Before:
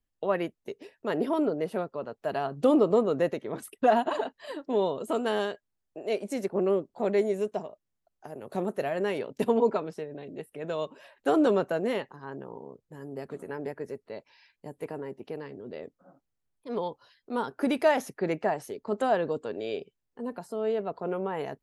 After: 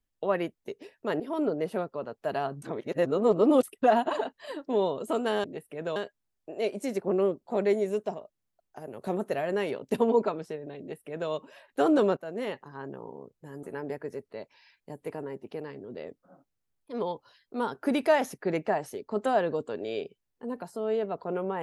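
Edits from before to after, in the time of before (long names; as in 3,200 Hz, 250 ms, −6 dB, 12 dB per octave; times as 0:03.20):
0:01.20–0:01.49: fade in, from −13 dB
0:02.62–0:03.63: reverse
0:10.27–0:10.79: duplicate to 0:05.44
0:11.65–0:12.12: fade in, from −16 dB
0:13.11–0:13.39: remove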